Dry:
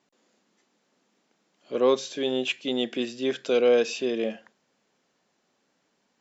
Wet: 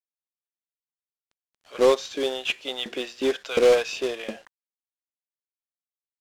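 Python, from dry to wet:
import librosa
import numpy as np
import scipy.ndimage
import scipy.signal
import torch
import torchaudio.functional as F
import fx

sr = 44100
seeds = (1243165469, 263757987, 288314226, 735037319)

y = fx.filter_lfo_highpass(x, sr, shape='saw_up', hz=2.8, low_hz=250.0, high_hz=1500.0, q=1.1)
y = fx.quant_companded(y, sr, bits=4)
y = fx.air_absorb(y, sr, metres=55.0)
y = y * 10.0 ** (2.0 / 20.0)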